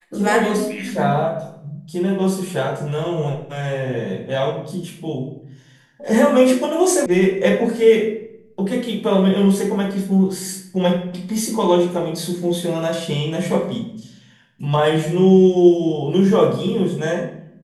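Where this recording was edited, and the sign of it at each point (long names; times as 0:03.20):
0:07.06: cut off before it has died away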